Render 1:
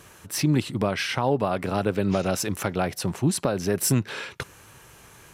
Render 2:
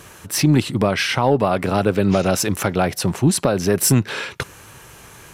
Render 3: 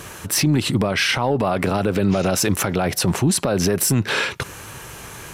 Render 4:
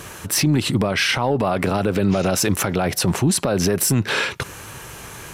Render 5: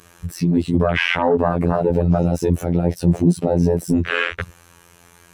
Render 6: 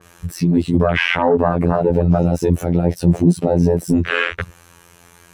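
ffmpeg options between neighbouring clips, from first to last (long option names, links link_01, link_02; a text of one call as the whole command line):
ffmpeg -i in.wav -af "acontrast=87" out.wav
ffmpeg -i in.wav -af "alimiter=limit=-16dB:level=0:latency=1:release=66,volume=6dB" out.wav
ffmpeg -i in.wav -af anull out.wav
ffmpeg -i in.wav -af "afftfilt=real='hypot(re,im)*cos(PI*b)':imag='0':win_size=2048:overlap=0.75,acontrast=82,afwtdn=0.1" out.wav
ffmpeg -i in.wav -af "adynamicequalizer=threshold=0.02:dfrequency=3100:dqfactor=0.7:tfrequency=3100:tqfactor=0.7:attack=5:release=100:ratio=0.375:range=2:mode=cutabove:tftype=highshelf,volume=2dB" out.wav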